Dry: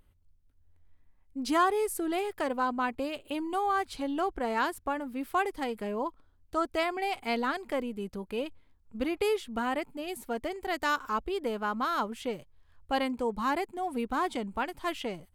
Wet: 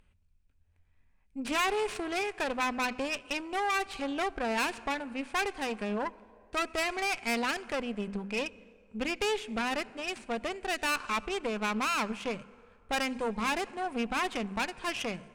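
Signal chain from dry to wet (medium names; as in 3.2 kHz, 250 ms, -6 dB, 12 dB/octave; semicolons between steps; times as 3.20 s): tracing distortion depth 0.35 ms; graphic EQ with 31 bands 200 Hz +7 dB, 315 Hz -6 dB, 1.6 kHz +4 dB, 2.5 kHz +11 dB; on a send at -21 dB: reverberation RT60 2.4 s, pre-delay 58 ms; on the sum: dynamic bell 4.2 kHz, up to +3 dB, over -38 dBFS, Q 0.78; in parallel at -4 dB: overload inside the chain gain 28.5 dB; on the sum: brick-wall FIR low-pass 10 kHz; hum notches 50/100/150/200/250 Hz; valve stage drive 24 dB, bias 0.8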